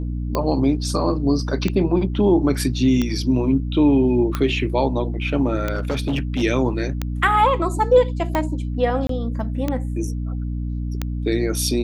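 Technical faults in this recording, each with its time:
mains hum 60 Hz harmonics 5 −25 dBFS
scratch tick 45 rpm −9 dBFS
0:05.75–0:06.43: clipping −17.5 dBFS
0:09.07–0:09.09: drop-out 23 ms

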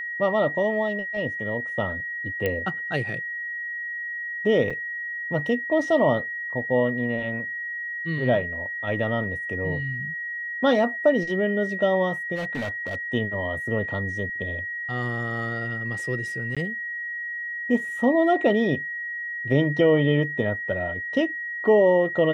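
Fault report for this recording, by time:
whistle 1,900 Hz −29 dBFS
0:02.46: click −13 dBFS
0:04.70–0:04.71: drop-out 5.3 ms
0:12.35–0:12.95: clipping −25 dBFS
0:16.55–0:16.57: drop-out 16 ms

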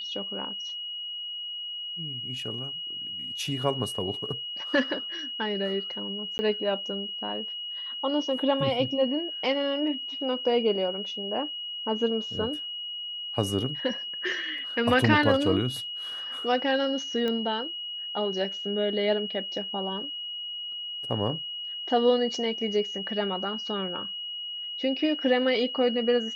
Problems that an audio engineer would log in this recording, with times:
whistle 2,900 Hz −33 dBFS
0:06.38–0:06.39: drop-out 10 ms
0:17.28: click −18 dBFS

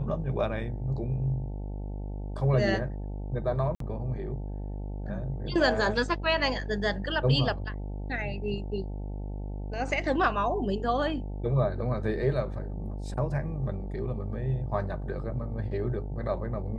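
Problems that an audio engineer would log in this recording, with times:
mains buzz 50 Hz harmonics 18 −35 dBFS
0:03.75–0:03.80: drop-out 53 ms

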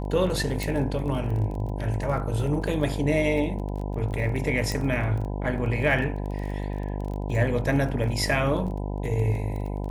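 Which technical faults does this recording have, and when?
mains buzz 50 Hz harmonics 20 −30 dBFS
surface crackle 21 per second −33 dBFS
0:00.63: click
0:04.72: click

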